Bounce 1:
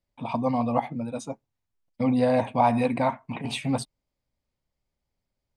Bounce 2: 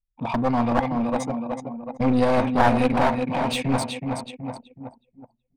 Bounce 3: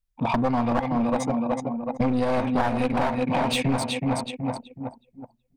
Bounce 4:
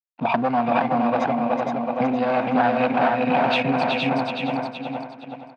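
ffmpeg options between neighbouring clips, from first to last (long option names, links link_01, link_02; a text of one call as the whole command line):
ffmpeg -i in.wav -af "aecho=1:1:372|744|1116|1488|1860|2232|2604:0.447|0.246|0.135|0.0743|0.0409|0.0225|0.0124,aeval=exprs='clip(val(0),-1,0.0398)':channel_layout=same,anlmdn=0.398,volume=5dB" out.wav
ffmpeg -i in.wav -af "acompressor=threshold=-24dB:ratio=6,volume=4.5dB" out.wav
ffmpeg -i in.wav -filter_complex "[0:a]aeval=exprs='sgn(val(0))*max(abs(val(0))-0.00398,0)':channel_layout=same,highpass=frequency=140:width=0.5412,highpass=frequency=140:width=1.3066,equalizer=frequency=710:width_type=q:width=4:gain=8,equalizer=frequency=1500:width_type=q:width=4:gain=7,equalizer=frequency=2600:width_type=q:width=4:gain=7,lowpass=frequency=4500:width=0.5412,lowpass=frequency=4500:width=1.3066,asplit=2[link_01][link_02];[link_02]aecho=0:1:467|934|1401|1868:0.668|0.187|0.0524|0.0147[link_03];[link_01][link_03]amix=inputs=2:normalize=0" out.wav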